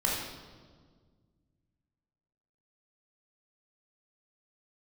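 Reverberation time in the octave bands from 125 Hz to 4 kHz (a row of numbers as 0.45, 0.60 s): 2.8, 2.4, 1.9, 1.5, 1.2, 1.2 s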